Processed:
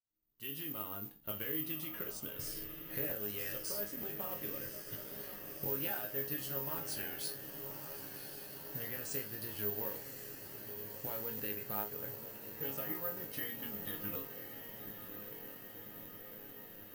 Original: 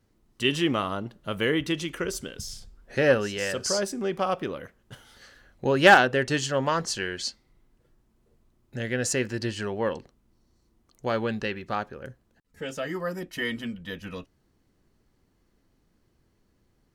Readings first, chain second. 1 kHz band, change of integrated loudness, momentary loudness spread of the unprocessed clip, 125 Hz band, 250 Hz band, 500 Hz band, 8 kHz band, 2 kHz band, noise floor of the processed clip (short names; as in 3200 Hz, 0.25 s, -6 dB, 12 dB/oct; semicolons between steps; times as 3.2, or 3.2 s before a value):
-21.5 dB, -13.0 dB, 16 LU, -14.5 dB, -16.5 dB, -18.0 dB, -12.0 dB, -21.0 dB, -52 dBFS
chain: opening faded in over 1.94 s; LPF 6100 Hz 12 dB/oct; bell 1200 Hz -2 dB; compressor 6:1, threshold -36 dBFS, peak gain reduction 23 dB; modulation noise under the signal 22 dB; resonator bank G#2 sus4, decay 0.27 s; diffused feedback echo 1.114 s, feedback 75%, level -8.5 dB; careless resampling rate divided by 3×, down none, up zero stuff; crackling interface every 0.92 s, samples 512, repeat, from 0.33; gain +6.5 dB